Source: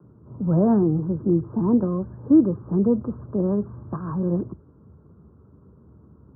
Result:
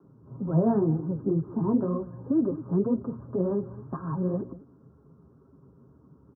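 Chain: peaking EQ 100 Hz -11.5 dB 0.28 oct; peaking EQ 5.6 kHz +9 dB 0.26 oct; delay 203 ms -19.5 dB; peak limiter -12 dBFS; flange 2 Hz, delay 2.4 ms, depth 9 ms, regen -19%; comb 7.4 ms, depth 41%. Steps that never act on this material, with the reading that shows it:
peaking EQ 5.6 kHz: input has nothing above 1.1 kHz

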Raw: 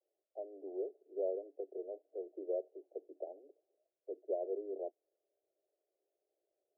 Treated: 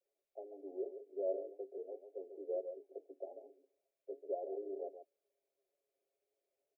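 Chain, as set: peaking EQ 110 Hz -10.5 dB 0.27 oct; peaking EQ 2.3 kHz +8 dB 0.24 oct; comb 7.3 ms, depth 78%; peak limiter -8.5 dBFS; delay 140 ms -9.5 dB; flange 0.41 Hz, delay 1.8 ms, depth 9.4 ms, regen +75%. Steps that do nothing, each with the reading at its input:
peaking EQ 110 Hz: input has nothing below 270 Hz; peaking EQ 2.3 kHz: input has nothing above 810 Hz; peak limiter -8.5 dBFS: peak at its input -23.5 dBFS

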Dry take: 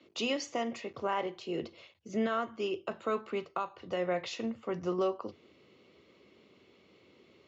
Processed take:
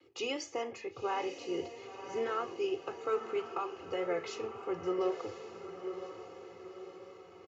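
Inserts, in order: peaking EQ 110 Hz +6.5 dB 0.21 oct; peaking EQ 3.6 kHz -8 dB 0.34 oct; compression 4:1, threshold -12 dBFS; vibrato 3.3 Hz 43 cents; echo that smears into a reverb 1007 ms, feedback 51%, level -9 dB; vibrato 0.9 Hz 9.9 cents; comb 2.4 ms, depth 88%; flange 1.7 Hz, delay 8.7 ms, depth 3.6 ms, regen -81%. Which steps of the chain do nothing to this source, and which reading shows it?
compression, threshold -12 dBFS: peak at its input -20.5 dBFS

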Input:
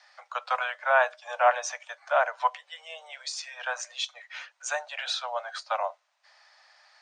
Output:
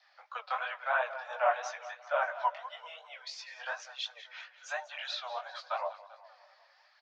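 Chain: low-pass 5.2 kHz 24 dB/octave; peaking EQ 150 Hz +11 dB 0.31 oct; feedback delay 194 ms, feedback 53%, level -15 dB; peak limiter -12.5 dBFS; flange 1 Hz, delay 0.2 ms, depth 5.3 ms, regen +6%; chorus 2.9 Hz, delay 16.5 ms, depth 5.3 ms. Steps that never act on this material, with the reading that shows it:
peaking EQ 150 Hz: input has nothing below 430 Hz

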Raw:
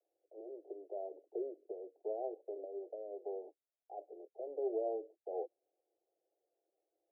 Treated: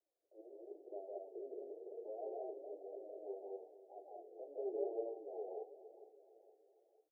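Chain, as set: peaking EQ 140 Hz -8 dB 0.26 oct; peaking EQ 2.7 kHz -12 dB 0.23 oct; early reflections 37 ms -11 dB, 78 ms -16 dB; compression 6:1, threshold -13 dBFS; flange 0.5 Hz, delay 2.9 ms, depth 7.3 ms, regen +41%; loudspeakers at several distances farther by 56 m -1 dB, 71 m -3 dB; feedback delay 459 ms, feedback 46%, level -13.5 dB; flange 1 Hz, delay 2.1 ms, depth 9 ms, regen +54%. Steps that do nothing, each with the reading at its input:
peaking EQ 140 Hz: input has nothing below 270 Hz; peaking EQ 2.7 kHz: input has nothing above 850 Hz; compression, threshold -13 dBFS: peak at its input -26.0 dBFS

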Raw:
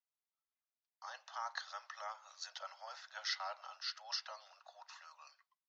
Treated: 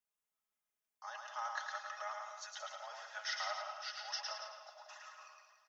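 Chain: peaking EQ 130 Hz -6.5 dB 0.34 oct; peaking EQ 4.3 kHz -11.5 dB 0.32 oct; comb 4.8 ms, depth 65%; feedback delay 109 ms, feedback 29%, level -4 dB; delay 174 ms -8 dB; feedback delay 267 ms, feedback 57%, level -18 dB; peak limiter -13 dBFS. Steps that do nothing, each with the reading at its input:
peaking EQ 130 Hz: input has nothing below 450 Hz; peak limiter -13 dBFS: peak at its input -24.0 dBFS

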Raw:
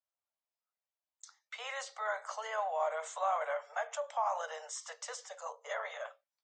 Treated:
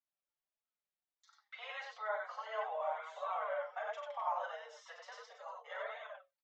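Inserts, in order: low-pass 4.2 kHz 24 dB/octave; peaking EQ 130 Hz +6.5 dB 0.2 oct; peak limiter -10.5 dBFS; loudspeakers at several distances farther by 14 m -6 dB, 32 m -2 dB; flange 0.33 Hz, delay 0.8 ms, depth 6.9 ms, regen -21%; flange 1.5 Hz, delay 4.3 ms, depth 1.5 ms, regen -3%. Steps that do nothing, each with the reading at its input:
peaking EQ 130 Hz: input has nothing below 430 Hz; peak limiter -10.5 dBFS: peak at its input -21.5 dBFS

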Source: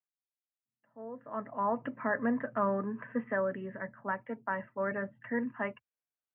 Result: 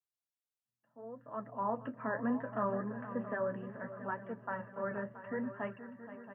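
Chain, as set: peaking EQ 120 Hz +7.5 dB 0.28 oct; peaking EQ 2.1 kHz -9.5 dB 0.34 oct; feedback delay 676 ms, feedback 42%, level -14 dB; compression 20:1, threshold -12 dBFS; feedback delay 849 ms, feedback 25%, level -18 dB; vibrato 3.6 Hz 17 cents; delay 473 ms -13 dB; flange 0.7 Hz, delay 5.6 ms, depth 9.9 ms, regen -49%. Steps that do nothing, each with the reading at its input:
compression, threshold -12 dBFS: peak at its input -18.0 dBFS

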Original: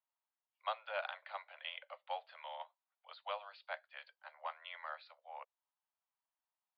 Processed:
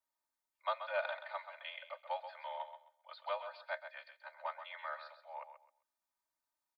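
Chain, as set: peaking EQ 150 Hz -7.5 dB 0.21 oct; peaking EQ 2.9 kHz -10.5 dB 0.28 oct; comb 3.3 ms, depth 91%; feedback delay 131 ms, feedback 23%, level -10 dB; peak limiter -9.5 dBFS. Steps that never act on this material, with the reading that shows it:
peaking EQ 150 Hz: input has nothing below 430 Hz; peak limiter -9.5 dBFS: peak at its input -22.5 dBFS

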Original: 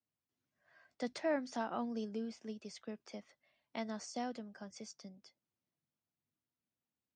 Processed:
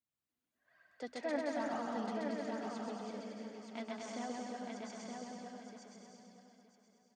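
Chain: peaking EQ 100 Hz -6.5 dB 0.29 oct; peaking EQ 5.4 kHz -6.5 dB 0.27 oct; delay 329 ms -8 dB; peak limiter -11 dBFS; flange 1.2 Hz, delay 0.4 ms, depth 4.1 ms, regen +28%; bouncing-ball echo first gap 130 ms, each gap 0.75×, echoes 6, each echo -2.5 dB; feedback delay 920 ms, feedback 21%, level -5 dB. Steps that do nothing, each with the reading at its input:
peak limiter -11 dBFS: peak at its input -24.0 dBFS

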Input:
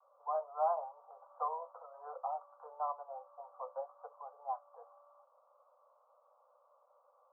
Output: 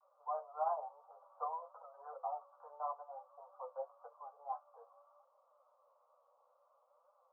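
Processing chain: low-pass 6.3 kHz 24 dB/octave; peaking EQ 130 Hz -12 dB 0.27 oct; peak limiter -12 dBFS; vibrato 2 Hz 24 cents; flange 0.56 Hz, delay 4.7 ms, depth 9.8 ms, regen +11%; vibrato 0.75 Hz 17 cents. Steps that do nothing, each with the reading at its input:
low-pass 6.3 kHz: input has nothing above 1.4 kHz; peaking EQ 130 Hz: input has nothing below 430 Hz; peak limiter -12 dBFS: peak at its input -22.5 dBFS

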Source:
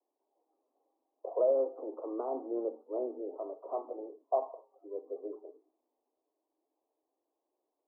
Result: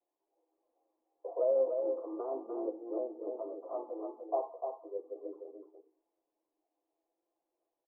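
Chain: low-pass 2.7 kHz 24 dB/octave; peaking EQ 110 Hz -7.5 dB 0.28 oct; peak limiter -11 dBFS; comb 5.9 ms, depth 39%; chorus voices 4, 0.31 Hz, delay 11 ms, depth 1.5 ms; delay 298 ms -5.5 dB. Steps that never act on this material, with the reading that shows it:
low-pass 2.7 kHz: input has nothing above 1.2 kHz; peaking EQ 110 Hz: input has nothing below 230 Hz; peak limiter -11 dBFS: peak at its input -18.5 dBFS

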